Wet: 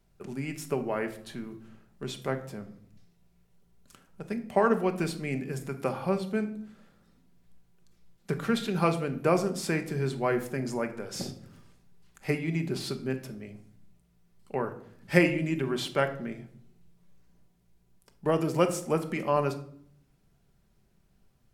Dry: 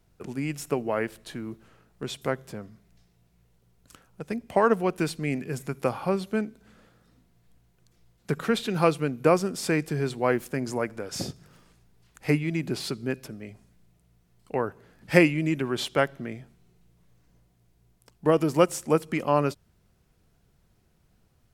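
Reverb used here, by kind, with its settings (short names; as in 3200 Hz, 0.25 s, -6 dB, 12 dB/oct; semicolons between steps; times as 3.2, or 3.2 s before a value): shoebox room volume 1000 m³, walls furnished, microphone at 1.2 m; gain -4 dB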